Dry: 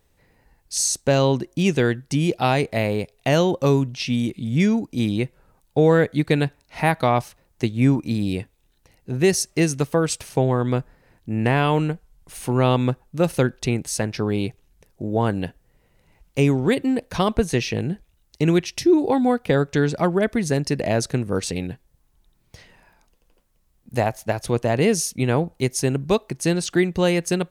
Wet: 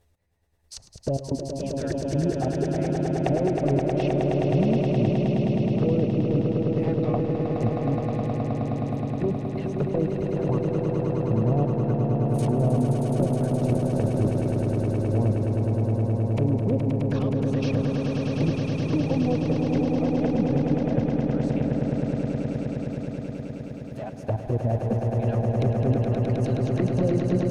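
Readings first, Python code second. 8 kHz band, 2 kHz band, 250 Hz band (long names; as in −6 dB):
below −15 dB, −13.5 dB, −2.0 dB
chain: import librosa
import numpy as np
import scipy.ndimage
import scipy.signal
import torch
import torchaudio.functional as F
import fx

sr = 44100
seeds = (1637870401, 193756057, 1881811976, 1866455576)

y = fx.dereverb_blind(x, sr, rt60_s=1.6)
y = np.clip(10.0 ** (14.5 / 20.0) * y, -1.0, 1.0) / 10.0 ** (14.5 / 20.0)
y = fx.step_gate(y, sr, bpm=103, pattern='x...xxxx.', floor_db=-12.0, edge_ms=4.5)
y = fx.peak_eq(y, sr, hz=82.0, db=9.0, octaves=0.83)
y = fx.env_flanger(y, sr, rest_ms=11.9, full_db=-16.0)
y = fx.level_steps(y, sr, step_db=14)
y = fx.peak_eq(y, sr, hz=640.0, db=5.5, octaves=0.39)
y = fx.env_lowpass_down(y, sr, base_hz=550.0, full_db=-30.0)
y = fx.echo_swell(y, sr, ms=105, loudest=8, wet_db=-5.5)
y = y * librosa.db_to_amplitude(4.5)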